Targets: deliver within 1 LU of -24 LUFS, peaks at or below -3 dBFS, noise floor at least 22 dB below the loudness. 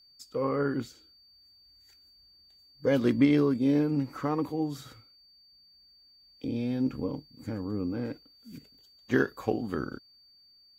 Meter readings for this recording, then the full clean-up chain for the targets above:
steady tone 4600 Hz; tone level -57 dBFS; loudness -29.5 LUFS; peak -10.5 dBFS; loudness target -24.0 LUFS
-> notch 4600 Hz, Q 30; gain +5.5 dB

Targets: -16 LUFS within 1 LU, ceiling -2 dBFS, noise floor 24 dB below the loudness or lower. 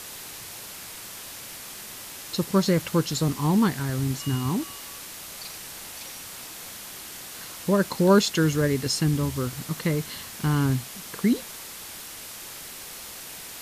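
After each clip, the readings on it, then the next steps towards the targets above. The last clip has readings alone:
noise floor -40 dBFS; noise floor target -52 dBFS; loudness -27.5 LUFS; peak -7.0 dBFS; loudness target -16.0 LUFS
-> denoiser 12 dB, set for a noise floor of -40 dBFS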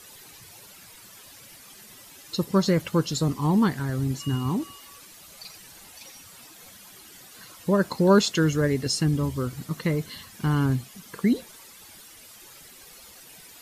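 noise floor -49 dBFS; loudness -25.0 LUFS; peak -7.5 dBFS; loudness target -16.0 LUFS
-> gain +9 dB; limiter -2 dBFS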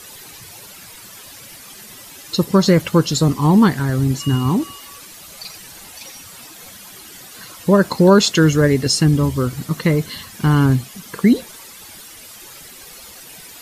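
loudness -16.0 LUFS; peak -2.0 dBFS; noise floor -40 dBFS

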